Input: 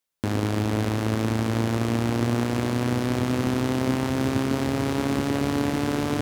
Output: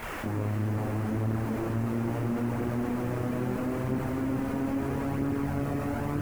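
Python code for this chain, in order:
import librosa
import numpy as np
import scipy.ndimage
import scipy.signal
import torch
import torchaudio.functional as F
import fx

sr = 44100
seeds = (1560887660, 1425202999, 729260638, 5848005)

y = fx.delta_mod(x, sr, bps=16000, step_db=-27.5)
y = scipy.signal.sosfilt(scipy.signal.butter(2, 2000.0, 'lowpass', fs=sr, output='sos'), y)
y = fx.low_shelf(y, sr, hz=280.0, db=3.5)
y = fx.quant_dither(y, sr, seeds[0], bits=8, dither='triangular')
y = fx.chorus_voices(y, sr, voices=2, hz=0.38, base_ms=25, depth_ms=4.5, mix_pct=70)
y = y + 10.0 ** (-5.0 / 20.0) * np.pad(y, (int(420 * sr / 1000.0), 0))[:len(y)]
y = fx.env_flatten(y, sr, amount_pct=50)
y = y * librosa.db_to_amplitude(-8.0)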